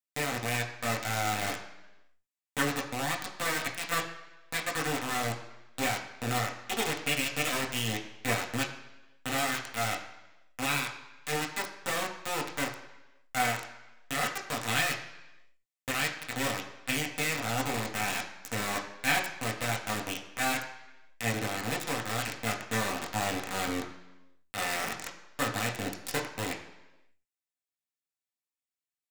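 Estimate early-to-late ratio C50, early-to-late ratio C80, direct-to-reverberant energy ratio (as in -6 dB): 9.0 dB, 11.0 dB, -0.5 dB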